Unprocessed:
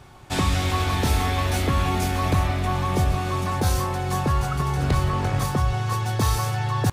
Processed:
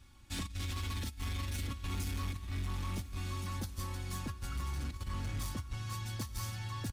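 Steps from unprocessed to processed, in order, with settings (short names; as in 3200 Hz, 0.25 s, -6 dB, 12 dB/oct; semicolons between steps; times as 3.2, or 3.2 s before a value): passive tone stack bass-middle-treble 6-0-2; comb 3.6 ms, depth 73%; negative-ratio compressor -37 dBFS, ratio -0.5; hard clip -33.5 dBFS, distortion -16 dB; on a send: diffused feedback echo 1.089 s, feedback 42%, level -15.5 dB; on the sum: gain +1 dB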